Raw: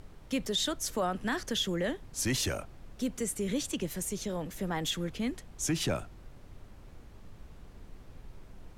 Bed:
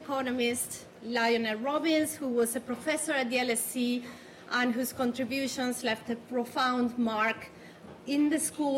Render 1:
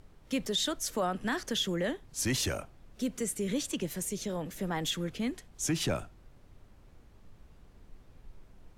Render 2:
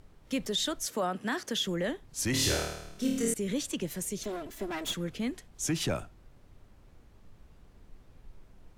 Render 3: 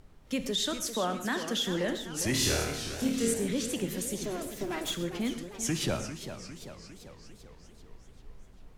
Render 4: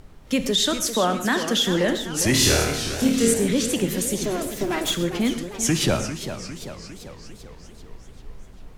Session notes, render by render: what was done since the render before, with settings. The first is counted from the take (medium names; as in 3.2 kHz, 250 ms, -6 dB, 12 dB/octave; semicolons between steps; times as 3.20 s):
noise print and reduce 6 dB
0.86–1.66 s: high-pass 140 Hz; 2.31–3.34 s: flutter echo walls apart 4.5 m, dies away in 0.86 s; 4.23–4.94 s: comb filter that takes the minimum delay 3 ms
gated-style reverb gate 170 ms flat, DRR 9.5 dB; modulated delay 397 ms, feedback 59%, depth 192 cents, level -10.5 dB
trim +9.5 dB